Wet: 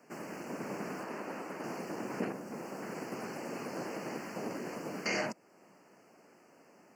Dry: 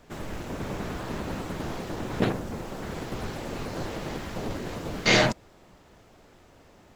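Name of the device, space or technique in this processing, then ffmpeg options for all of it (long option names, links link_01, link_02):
PA system with an anti-feedback notch: -filter_complex "[0:a]asettb=1/sr,asplit=3[link_01][link_02][link_03];[link_01]atrim=end=1.044[link_04];[link_02]atrim=start=1.04:end=1.64,asetpts=PTS-STARTPTS,afade=type=in:duration=0.004:curve=qsin,afade=type=out:start_time=0.596:duration=0.004:curve=qsin,bass=frequency=250:gain=-9,treble=frequency=4000:gain=-5[link_05];[link_03]atrim=start=1.636[link_06];[link_04][link_05]acrossfade=duration=0.004:curve1=hsin:curve2=qsin[link_07];[link_07][link_06]acrossfade=duration=0.004:curve1=qsin:curve2=hsin,highpass=frequency=180:width=0.5412,highpass=frequency=180:width=1.3066,asuperstop=centerf=3600:order=8:qfactor=2.3,alimiter=limit=-18.5dB:level=0:latency=1:release=412,volume=-4.5dB"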